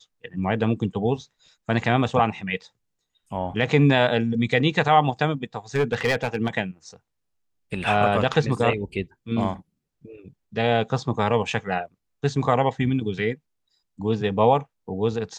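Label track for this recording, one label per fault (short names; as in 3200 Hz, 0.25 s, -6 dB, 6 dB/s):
5.750000	6.490000	clipped -16 dBFS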